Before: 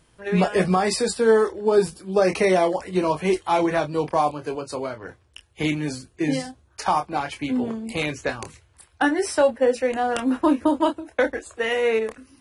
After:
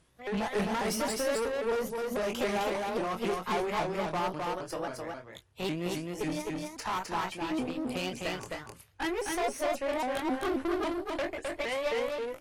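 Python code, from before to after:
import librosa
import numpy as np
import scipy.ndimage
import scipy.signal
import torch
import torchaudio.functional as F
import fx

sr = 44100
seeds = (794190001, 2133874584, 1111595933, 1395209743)

y = fx.pitch_ramps(x, sr, semitones=4.5, every_ms=271)
y = fx.tube_stage(y, sr, drive_db=24.0, bias=0.6)
y = y + 10.0 ** (-3.0 / 20.0) * np.pad(y, (int(260 * sr / 1000.0), 0))[:len(y)]
y = y * librosa.db_to_amplitude(-4.0)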